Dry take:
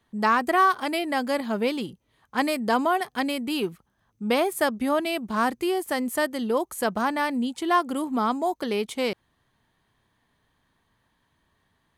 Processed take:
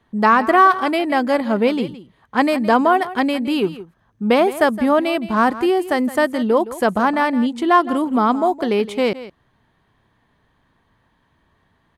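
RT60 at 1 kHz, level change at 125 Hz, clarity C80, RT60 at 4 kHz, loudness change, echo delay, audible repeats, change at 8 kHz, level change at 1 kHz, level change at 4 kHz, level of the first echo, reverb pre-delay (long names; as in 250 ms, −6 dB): no reverb audible, +8.5 dB, no reverb audible, no reverb audible, +8.0 dB, 166 ms, 1, −2.5 dB, +8.0 dB, +3.5 dB, −15.5 dB, no reverb audible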